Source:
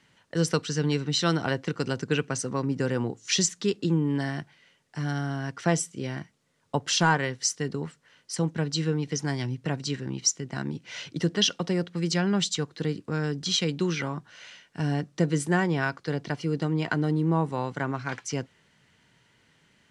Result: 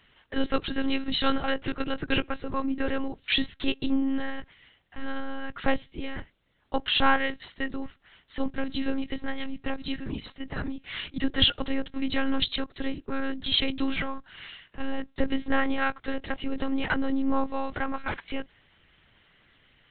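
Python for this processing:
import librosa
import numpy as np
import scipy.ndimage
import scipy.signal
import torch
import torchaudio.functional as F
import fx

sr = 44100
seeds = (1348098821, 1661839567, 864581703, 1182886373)

y = fx.cheby_harmonics(x, sr, harmonics=(2,), levels_db=(-19,), full_scale_db=-8.5)
y = fx.high_shelf(y, sr, hz=2100.0, db=6.5)
y = fx.lpc_monotone(y, sr, seeds[0], pitch_hz=270.0, order=10)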